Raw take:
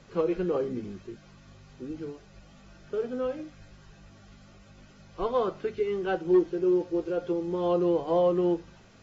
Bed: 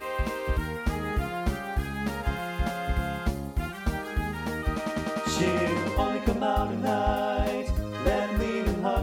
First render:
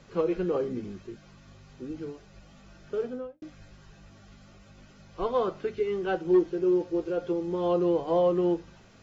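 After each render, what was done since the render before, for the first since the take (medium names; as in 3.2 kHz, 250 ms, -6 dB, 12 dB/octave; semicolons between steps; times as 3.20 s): 3.01–3.42 s: studio fade out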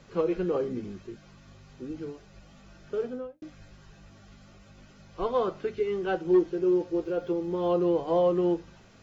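7.04–7.97 s: decimation joined by straight lines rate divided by 2×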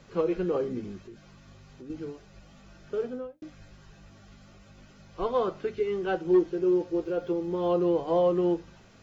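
1.04–1.90 s: compression 4:1, threshold -42 dBFS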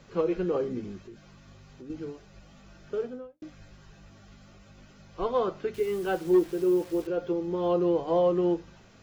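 2.94–3.40 s: fade out, to -10.5 dB; 5.74–7.07 s: word length cut 8-bit, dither none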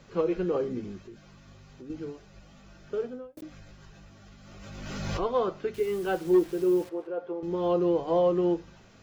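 3.37–5.24 s: swell ahead of each attack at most 29 dB/s; 6.89–7.43 s: band-pass filter 820 Hz, Q 1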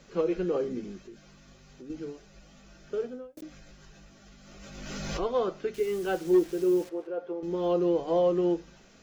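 fifteen-band graphic EQ 100 Hz -12 dB, 1 kHz -4 dB, 6.3 kHz +4 dB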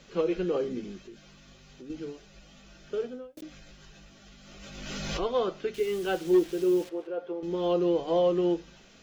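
peaking EQ 3.2 kHz +6 dB 0.92 oct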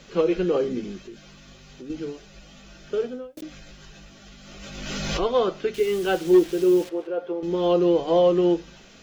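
trim +6 dB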